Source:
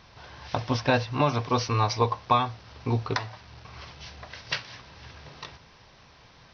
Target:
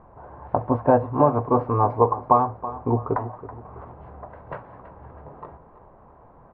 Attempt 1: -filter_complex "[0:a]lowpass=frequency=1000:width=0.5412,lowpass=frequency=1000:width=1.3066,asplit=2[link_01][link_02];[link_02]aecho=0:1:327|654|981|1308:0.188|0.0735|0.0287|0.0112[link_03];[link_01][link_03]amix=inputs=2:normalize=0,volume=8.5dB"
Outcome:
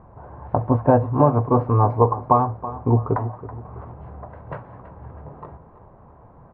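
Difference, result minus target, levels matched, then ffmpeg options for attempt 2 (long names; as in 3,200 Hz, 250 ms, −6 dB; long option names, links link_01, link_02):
125 Hz band +5.5 dB
-filter_complex "[0:a]lowpass=frequency=1000:width=0.5412,lowpass=frequency=1000:width=1.3066,equalizer=frequency=110:width_type=o:width=2:gain=-7.5,asplit=2[link_01][link_02];[link_02]aecho=0:1:327|654|981|1308:0.188|0.0735|0.0287|0.0112[link_03];[link_01][link_03]amix=inputs=2:normalize=0,volume=8.5dB"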